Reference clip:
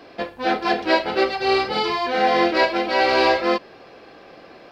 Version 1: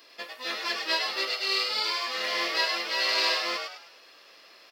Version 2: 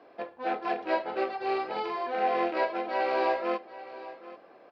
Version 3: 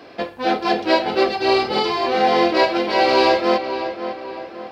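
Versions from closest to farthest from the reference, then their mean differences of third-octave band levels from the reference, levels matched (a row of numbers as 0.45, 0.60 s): 3, 2, 1; 3.0, 5.0, 10.5 dB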